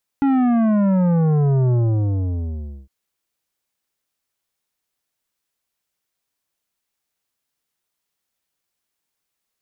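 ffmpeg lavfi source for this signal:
ffmpeg -f lavfi -i "aevalsrc='0.178*clip((2.66-t)/1.16,0,1)*tanh(3.55*sin(2*PI*280*2.66/log(65/280)*(exp(log(65/280)*t/2.66)-1)))/tanh(3.55)':duration=2.66:sample_rate=44100" out.wav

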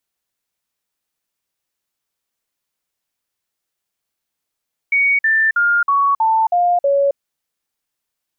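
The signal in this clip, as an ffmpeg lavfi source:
ffmpeg -f lavfi -i "aevalsrc='0.266*clip(min(mod(t,0.32),0.27-mod(t,0.32))/0.005,0,1)*sin(2*PI*2240*pow(2,-floor(t/0.32)/3)*mod(t,0.32))':duration=2.24:sample_rate=44100" out.wav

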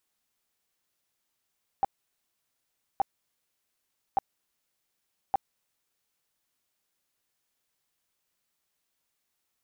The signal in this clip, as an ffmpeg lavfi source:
ffmpeg -f lavfi -i "aevalsrc='0.106*sin(2*PI*788*mod(t,1.17))*lt(mod(t,1.17),13/788)':duration=4.68:sample_rate=44100" out.wav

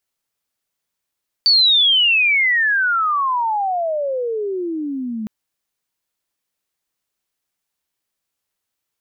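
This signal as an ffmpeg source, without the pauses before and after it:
ffmpeg -f lavfi -i "aevalsrc='pow(10,(-9.5-13*t/3.81)/20)*sin(2*PI*4600*3.81/log(210/4600)*(exp(log(210/4600)*t/3.81)-1))':duration=3.81:sample_rate=44100" out.wav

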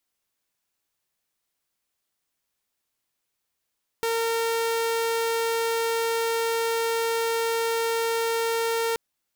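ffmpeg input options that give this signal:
ffmpeg -f lavfi -i "aevalsrc='0.0944*(2*mod(458*t,1)-1)':duration=4.93:sample_rate=44100" out.wav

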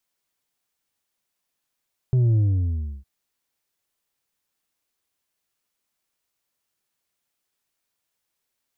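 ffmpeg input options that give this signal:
ffmpeg -f lavfi -i "aevalsrc='0.158*clip((0.91-t)/0.68,0,1)*tanh(1.68*sin(2*PI*130*0.91/log(65/130)*(exp(log(65/130)*t/0.91)-1)))/tanh(1.68)':duration=0.91:sample_rate=44100" out.wav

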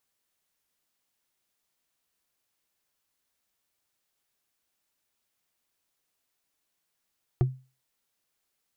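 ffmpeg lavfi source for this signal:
ffmpeg -f lavfi -i "aevalsrc='0.158*pow(10,-3*t/0.32)*sin(2*PI*130*t)+0.0708*pow(10,-3*t/0.095)*sin(2*PI*358.4*t)+0.0316*pow(10,-3*t/0.042)*sin(2*PI*702.5*t)+0.0141*pow(10,-3*t/0.023)*sin(2*PI*1161.3*t)+0.00631*pow(10,-3*t/0.014)*sin(2*PI*1734.2*t)':duration=0.45:sample_rate=44100" out.wav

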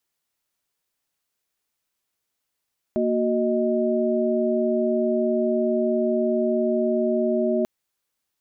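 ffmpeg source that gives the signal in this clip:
ffmpeg -f lavfi -i "aevalsrc='0.0668*(sin(2*PI*233.08*t)+sin(2*PI*369.99*t)+sin(2*PI*622.25*t))':duration=4.69:sample_rate=44100" out.wav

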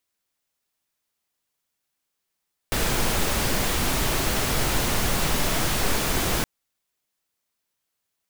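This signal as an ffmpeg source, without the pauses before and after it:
ffmpeg -f lavfi -i "anoisesrc=color=pink:amplitude=0.363:duration=3.72:sample_rate=44100:seed=1" out.wav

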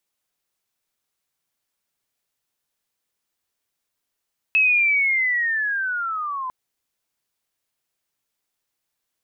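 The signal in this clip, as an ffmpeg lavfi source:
ffmpeg -f lavfi -i "aevalsrc='pow(10,(-13.5-12*t/1.95)/20)*sin(2*PI*(2600*t-1600*t*t/(2*1.95)))':duration=1.95:sample_rate=44100" out.wav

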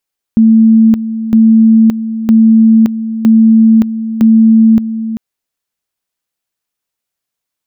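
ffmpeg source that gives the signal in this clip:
ffmpeg -f lavfi -i "aevalsrc='pow(10,(-2.5-12*gte(mod(t,0.96),0.57))/20)*sin(2*PI*223*t)':duration=4.8:sample_rate=44100" out.wav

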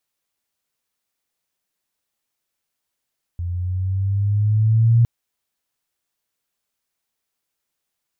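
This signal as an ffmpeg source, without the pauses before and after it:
ffmpeg -f lavfi -i "aevalsrc='pow(10,(-10+12.5*(t/1.66-1))/20)*sin(2*PI*86*1.66/(5.5*log(2)/12)*(exp(5.5*log(2)/12*t/1.66)-1))':duration=1.66:sample_rate=44100" out.wav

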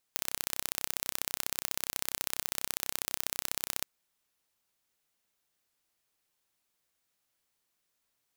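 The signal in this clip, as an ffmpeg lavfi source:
ffmpeg -f lavfi -i "aevalsrc='0.708*eq(mod(n,1370),0)*(0.5+0.5*eq(mod(n,2740),0))':duration=3.69:sample_rate=44100" out.wav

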